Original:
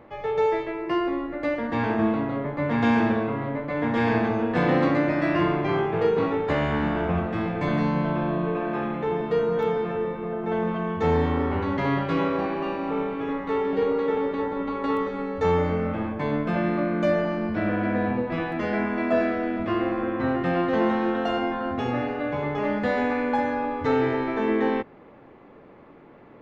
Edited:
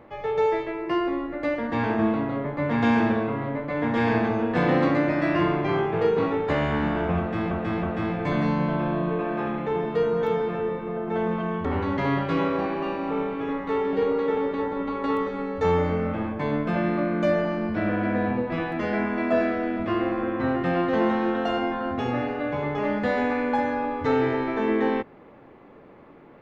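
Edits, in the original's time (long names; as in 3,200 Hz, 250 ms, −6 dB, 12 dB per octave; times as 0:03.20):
0:07.19–0:07.51: repeat, 3 plays
0:11.01–0:11.45: remove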